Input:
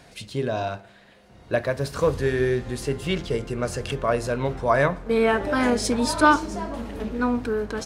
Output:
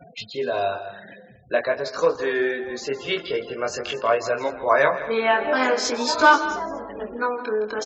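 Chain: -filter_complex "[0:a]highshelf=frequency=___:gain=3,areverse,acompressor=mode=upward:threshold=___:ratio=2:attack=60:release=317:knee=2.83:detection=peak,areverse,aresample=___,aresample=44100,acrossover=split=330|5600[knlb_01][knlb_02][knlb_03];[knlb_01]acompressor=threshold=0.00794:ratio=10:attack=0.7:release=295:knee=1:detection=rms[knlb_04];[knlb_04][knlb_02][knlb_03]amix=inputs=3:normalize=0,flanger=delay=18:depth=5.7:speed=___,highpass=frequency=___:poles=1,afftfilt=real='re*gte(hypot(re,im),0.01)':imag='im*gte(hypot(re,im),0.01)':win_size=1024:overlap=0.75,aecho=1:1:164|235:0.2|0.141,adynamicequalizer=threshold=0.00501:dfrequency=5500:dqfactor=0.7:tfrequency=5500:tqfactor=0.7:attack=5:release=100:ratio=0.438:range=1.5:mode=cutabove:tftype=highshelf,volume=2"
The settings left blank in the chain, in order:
3300, 0.0251, 16000, 0.46, 110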